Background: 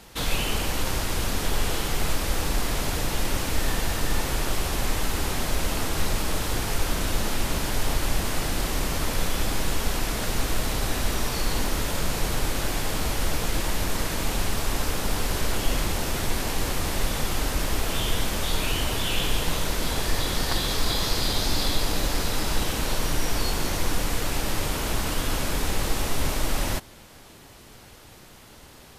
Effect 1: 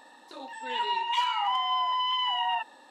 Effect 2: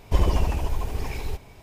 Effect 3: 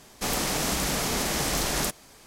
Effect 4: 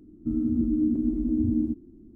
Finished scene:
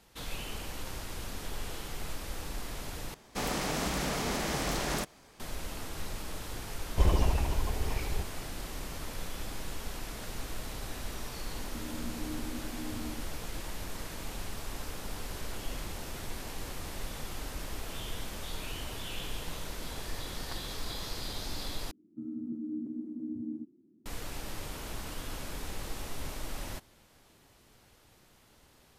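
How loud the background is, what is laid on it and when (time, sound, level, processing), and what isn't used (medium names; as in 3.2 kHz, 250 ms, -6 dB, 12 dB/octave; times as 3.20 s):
background -13.5 dB
3.14 s: replace with 3 -3.5 dB + treble shelf 4.5 kHz -8.5 dB
6.86 s: add 2 -4.5 dB
11.48 s: add 4 -17 dB
21.91 s: replace with 4 -13 dB + high-pass 140 Hz 24 dB/octave
not used: 1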